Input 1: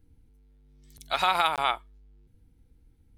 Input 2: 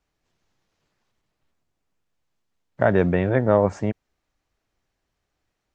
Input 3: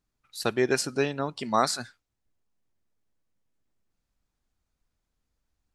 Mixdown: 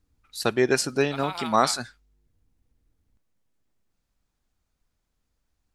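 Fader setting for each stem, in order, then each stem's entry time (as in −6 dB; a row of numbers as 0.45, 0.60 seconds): −10.5 dB, muted, +3.0 dB; 0.00 s, muted, 0.00 s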